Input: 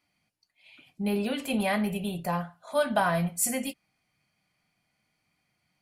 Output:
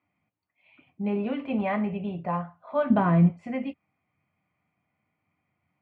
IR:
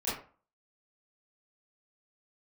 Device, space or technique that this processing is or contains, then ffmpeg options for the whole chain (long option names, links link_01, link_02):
bass cabinet: -filter_complex "[0:a]highpass=62,highpass=67,equalizer=frequency=89:width_type=q:width=4:gain=9,equalizer=frequency=280:width_type=q:width=4:gain=3,equalizer=frequency=1100:width_type=q:width=4:gain=4,equalizer=frequency=1600:width_type=q:width=4:gain=-7,lowpass=frequency=2300:width=0.5412,lowpass=frequency=2300:width=1.3066,asettb=1/sr,asplit=3[link_01][link_02][link_03];[link_01]atrim=end=2.904[link_04];[link_02]atrim=start=2.9:end=3.32,asetpts=PTS-STARTPTS,afade=type=in:duration=0.004:curve=qsin,afade=type=out:start_time=0.416:duration=0.004:curve=qsin,lowshelf=frequency=470:width_type=q:width=1.5:gain=9[link_05];[link_03]atrim=start=3.316[link_06];[link_04][link_05]acrossfade=duration=0.004:curve1=hsin:curve2=qsin[link_07];[link_07][link_06]acrossfade=duration=0.004:curve1=qsin:curve2=hsin"